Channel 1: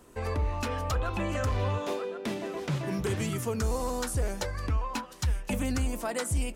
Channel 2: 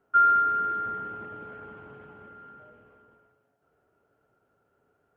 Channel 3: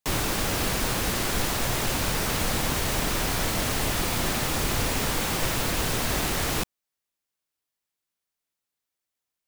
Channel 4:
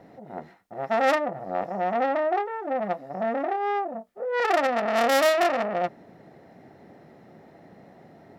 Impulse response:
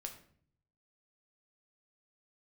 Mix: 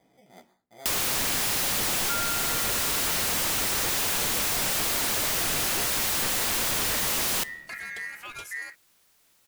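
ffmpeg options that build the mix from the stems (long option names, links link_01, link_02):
-filter_complex "[0:a]aeval=exprs='val(0)*sin(2*PI*1900*n/s)':channel_layout=same,adelay=2200,volume=-5.5dB[link_01];[1:a]adelay=1950,volume=-4.5dB[link_02];[2:a]alimiter=limit=-18.5dB:level=0:latency=1:release=139,aeval=exprs='0.119*sin(PI/2*5.62*val(0)/0.119)':channel_layout=same,adelay=800,volume=1.5dB,asplit=2[link_03][link_04];[link_04]volume=-9dB[link_05];[3:a]acrusher=samples=16:mix=1:aa=0.000001,flanger=delay=15.5:depth=4.6:speed=0.29,volume=-13dB,asplit=2[link_06][link_07];[link_07]volume=-9dB[link_08];[4:a]atrim=start_sample=2205[link_09];[link_05][link_08]amix=inputs=2:normalize=0[link_10];[link_10][link_09]afir=irnorm=-1:irlink=0[link_11];[link_01][link_02][link_03][link_06][link_11]amix=inputs=5:normalize=0,acompressor=threshold=-28dB:ratio=3"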